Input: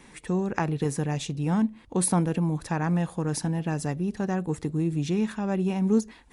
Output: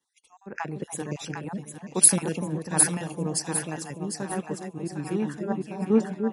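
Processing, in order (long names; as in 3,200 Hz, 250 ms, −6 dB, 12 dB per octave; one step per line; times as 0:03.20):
time-frequency cells dropped at random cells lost 37%
high-pass filter 270 Hz 6 dB per octave
high-shelf EQ 6,700 Hz +4.5 dB
echo with a time of its own for lows and highs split 740 Hz, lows 295 ms, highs 754 ms, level −3.5 dB
multiband upward and downward expander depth 100%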